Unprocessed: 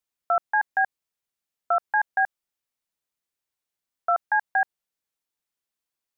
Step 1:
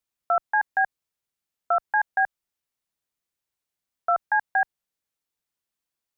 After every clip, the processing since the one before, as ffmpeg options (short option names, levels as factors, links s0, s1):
-af "equalizer=f=62:w=0.32:g=4"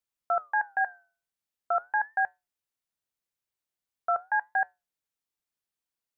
-af "flanger=delay=6.1:depth=4.8:regen=-83:speed=0.43:shape=sinusoidal"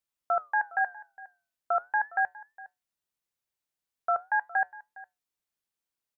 -af "aecho=1:1:411:0.1"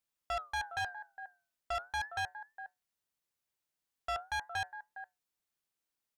-af "asoftclip=type=tanh:threshold=0.0251"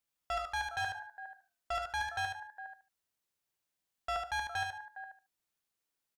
-af "aecho=1:1:74|148|222:0.562|0.112|0.0225"